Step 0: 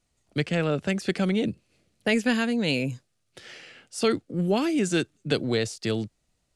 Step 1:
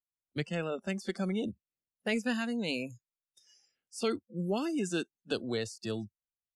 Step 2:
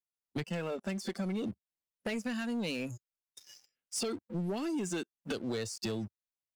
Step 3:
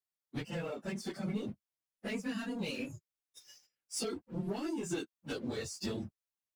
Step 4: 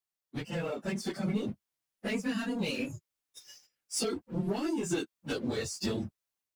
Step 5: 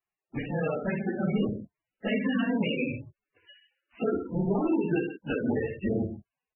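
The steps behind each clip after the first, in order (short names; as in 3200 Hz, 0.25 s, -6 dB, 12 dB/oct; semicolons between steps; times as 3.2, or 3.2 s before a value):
spectral noise reduction 28 dB; gain -8 dB
compressor 10:1, threshold -41 dBFS, peak gain reduction 15.5 dB; sample leveller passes 3
phase scrambler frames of 50 ms; gain -2.5 dB
AGC gain up to 5 dB
on a send: loudspeakers at several distances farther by 20 m -5 dB, 44 m -10 dB; on the sum: gain +4.5 dB; MP3 8 kbps 24000 Hz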